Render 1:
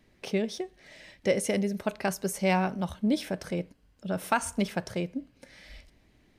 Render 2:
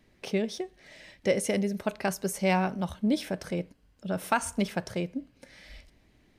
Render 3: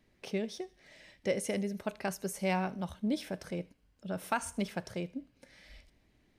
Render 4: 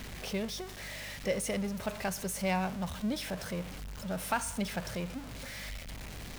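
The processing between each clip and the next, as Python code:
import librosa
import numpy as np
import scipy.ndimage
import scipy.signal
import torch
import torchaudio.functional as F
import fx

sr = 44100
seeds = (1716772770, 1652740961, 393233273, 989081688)

y1 = x
y2 = fx.echo_wet_highpass(y1, sr, ms=77, feedback_pct=34, hz=2100.0, wet_db=-19.5)
y2 = F.gain(torch.from_numpy(y2), -6.0).numpy()
y3 = y2 + 0.5 * 10.0 ** (-38.0 / 20.0) * np.sign(y2)
y3 = fx.peak_eq(y3, sr, hz=330.0, db=-7.0, octaves=0.69)
y3 = fx.add_hum(y3, sr, base_hz=50, snr_db=13)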